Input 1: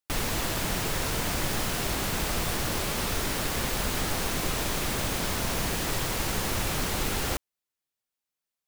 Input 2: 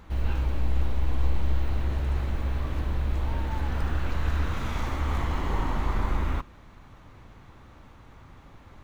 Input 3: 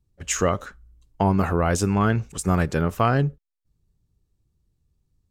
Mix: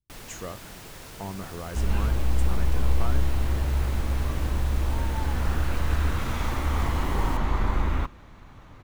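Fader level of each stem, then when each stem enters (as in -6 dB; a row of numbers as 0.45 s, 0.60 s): -14.0 dB, +2.0 dB, -16.0 dB; 0.00 s, 1.65 s, 0.00 s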